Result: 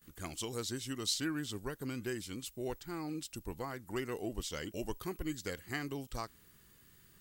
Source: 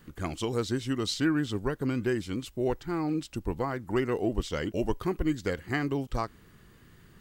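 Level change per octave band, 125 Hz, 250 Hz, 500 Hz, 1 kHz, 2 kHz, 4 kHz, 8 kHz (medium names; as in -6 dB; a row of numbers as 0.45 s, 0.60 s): -11.0 dB, -11.0 dB, -10.5 dB, -9.5 dB, -7.5 dB, -2.5 dB, +2.0 dB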